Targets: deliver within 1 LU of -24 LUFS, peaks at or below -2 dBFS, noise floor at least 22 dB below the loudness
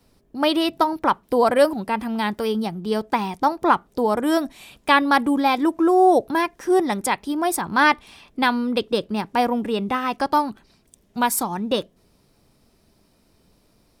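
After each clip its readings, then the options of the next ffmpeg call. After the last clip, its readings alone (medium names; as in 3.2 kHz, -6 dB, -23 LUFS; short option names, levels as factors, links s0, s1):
loudness -21.0 LUFS; peak level -3.0 dBFS; loudness target -24.0 LUFS
-> -af "volume=0.708"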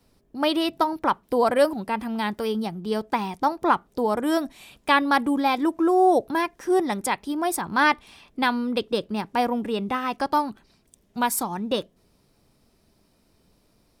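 loudness -24.0 LUFS; peak level -6.0 dBFS; noise floor -64 dBFS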